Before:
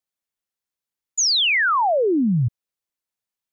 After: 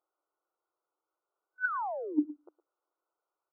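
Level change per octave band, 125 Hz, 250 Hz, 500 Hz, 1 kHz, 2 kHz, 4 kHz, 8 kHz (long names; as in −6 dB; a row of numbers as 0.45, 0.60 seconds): below −40 dB, −12.5 dB, −18.0 dB, −15.5 dB, −15.0 dB, below −40 dB, can't be measured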